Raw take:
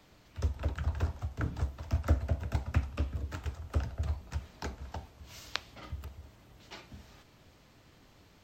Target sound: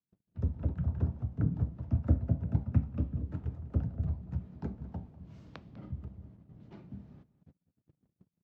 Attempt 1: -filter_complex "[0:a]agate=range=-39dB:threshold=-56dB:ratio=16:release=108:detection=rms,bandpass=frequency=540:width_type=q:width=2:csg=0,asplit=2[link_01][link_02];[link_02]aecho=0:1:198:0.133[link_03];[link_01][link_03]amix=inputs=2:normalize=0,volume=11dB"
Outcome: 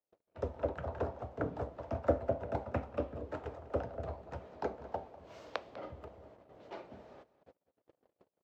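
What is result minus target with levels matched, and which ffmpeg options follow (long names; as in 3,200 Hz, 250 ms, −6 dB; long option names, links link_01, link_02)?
500 Hz band +18.5 dB
-filter_complex "[0:a]agate=range=-39dB:threshold=-56dB:ratio=16:release=108:detection=rms,bandpass=frequency=170:width_type=q:width=2:csg=0,asplit=2[link_01][link_02];[link_02]aecho=0:1:198:0.133[link_03];[link_01][link_03]amix=inputs=2:normalize=0,volume=11dB"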